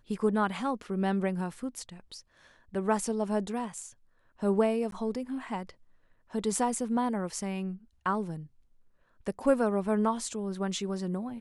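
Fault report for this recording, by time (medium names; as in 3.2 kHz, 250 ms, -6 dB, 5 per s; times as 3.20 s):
4.91–4.92 s: dropout 12 ms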